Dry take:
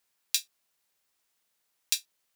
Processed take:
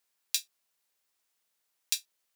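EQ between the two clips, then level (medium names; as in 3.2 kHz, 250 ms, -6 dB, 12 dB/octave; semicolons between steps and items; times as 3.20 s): tone controls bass -4 dB, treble +1 dB; -3.0 dB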